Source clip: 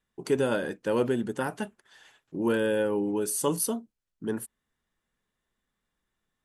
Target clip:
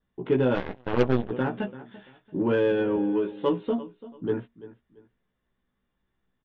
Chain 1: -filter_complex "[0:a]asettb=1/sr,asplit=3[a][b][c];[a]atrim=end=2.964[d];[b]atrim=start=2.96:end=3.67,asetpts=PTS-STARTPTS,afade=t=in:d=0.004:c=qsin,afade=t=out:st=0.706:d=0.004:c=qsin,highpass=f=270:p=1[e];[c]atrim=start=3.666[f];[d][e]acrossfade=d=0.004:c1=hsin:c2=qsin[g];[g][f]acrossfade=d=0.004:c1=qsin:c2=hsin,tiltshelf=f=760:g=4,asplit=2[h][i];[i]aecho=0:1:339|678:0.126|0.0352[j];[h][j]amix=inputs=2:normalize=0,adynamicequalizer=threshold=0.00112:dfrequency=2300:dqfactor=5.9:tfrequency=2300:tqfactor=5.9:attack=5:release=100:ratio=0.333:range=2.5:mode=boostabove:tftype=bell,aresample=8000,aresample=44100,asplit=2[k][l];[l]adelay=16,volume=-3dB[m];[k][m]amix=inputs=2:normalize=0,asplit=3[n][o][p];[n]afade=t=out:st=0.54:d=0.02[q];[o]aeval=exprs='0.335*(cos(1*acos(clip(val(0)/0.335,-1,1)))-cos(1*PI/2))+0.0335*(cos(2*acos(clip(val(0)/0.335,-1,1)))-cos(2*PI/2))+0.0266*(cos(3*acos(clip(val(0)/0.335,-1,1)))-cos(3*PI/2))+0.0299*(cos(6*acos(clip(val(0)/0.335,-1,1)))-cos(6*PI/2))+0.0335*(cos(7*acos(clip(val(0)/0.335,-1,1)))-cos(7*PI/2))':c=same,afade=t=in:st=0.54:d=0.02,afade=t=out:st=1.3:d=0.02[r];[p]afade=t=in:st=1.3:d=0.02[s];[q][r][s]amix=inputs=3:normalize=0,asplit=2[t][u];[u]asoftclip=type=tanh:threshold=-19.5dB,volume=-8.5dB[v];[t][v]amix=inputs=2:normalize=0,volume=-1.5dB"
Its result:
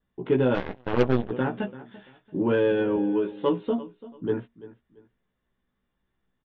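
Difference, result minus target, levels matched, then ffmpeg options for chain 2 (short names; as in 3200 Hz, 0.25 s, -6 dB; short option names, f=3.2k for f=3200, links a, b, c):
soft clip: distortion -5 dB
-filter_complex "[0:a]asettb=1/sr,asplit=3[a][b][c];[a]atrim=end=2.964[d];[b]atrim=start=2.96:end=3.67,asetpts=PTS-STARTPTS,afade=t=in:d=0.004:c=qsin,afade=t=out:st=0.706:d=0.004:c=qsin,highpass=f=270:p=1[e];[c]atrim=start=3.666[f];[d][e]acrossfade=d=0.004:c1=hsin:c2=qsin[g];[g][f]acrossfade=d=0.004:c1=qsin:c2=hsin,tiltshelf=f=760:g=4,asplit=2[h][i];[i]aecho=0:1:339|678:0.126|0.0352[j];[h][j]amix=inputs=2:normalize=0,adynamicequalizer=threshold=0.00112:dfrequency=2300:dqfactor=5.9:tfrequency=2300:tqfactor=5.9:attack=5:release=100:ratio=0.333:range=2.5:mode=boostabove:tftype=bell,aresample=8000,aresample=44100,asplit=2[k][l];[l]adelay=16,volume=-3dB[m];[k][m]amix=inputs=2:normalize=0,asplit=3[n][o][p];[n]afade=t=out:st=0.54:d=0.02[q];[o]aeval=exprs='0.335*(cos(1*acos(clip(val(0)/0.335,-1,1)))-cos(1*PI/2))+0.0335*(cos(2*acos(clip(val(0)/0.335,-1,1)))-cos(2*PI/2))+0.0266*(cos(3*acos(clip(val(0)/0.335,-1,1)))-cos(3*PI/2))+0.0299*(cos(6*acos(clip(val(0)/0.335,-1,1)))-cos(6*PI/2))+0.0335*(cos(7*acos(clip(val(0)/0.335,-1,1)))-cos(7*PI/2))':c=same,afade=t=in:st=0.54:d=0.02,afade=t=out:st=1.3:d=0.02[r];[p]afade=t=in:st=1.3:d=0.02[s];[q][r][s]amix=inputs=3:normalize=0,asplit=2[t][u];[u]asoftclip=type=tanh:threshold=-26dB,volume=-8.5dB[v];[t][v]amix=inputs=2:normalize=0,volume=-1.5dB"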